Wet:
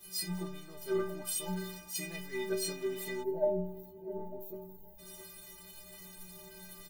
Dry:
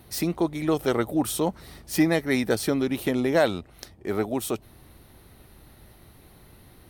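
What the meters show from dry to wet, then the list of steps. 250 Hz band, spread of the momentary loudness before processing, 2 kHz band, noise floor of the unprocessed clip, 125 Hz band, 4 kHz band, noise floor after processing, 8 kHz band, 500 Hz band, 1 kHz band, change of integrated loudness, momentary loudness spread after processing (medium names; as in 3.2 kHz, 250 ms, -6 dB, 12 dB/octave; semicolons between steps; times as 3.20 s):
-16.0 dB, 11 LU, -13.5 dB, -53 dBFS, -12.0 dB, -7.0 dB, -53 dBFS, -5.0 dB, -9.5 dB, -14.5 dB, -11.5 dB, 16 LU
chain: jump at every zero crossing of -24 dBFS; inharmonic resonator 180 Hz, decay 0.8 s, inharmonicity 0.03; on a send: delay 670 ms -13.5 dB; on the sum: time-frequency box 3.23–4.99 s, 940–12000 Hz -24 dB; three bands expanded up and down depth 70%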